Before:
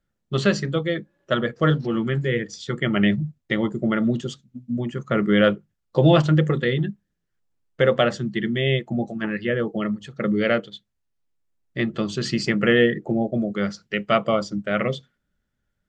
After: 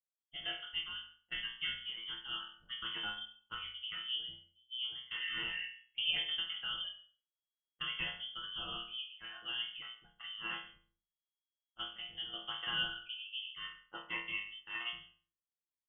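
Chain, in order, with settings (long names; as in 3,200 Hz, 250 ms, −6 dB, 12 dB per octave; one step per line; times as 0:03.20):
healed spectral selection 0:05.17–0:05.63, 290–1,700 Hz before
resonators tuned to a chord B2 sus4, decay 0.47 s
voice inversion scrambler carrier 3,300 Hz
low-pass that shuts in the quiet parts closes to 510 Hz, open at −37 dBFS
on a send: single-tap delay 137 ms −20.5 dB
on the sum: level −2 dB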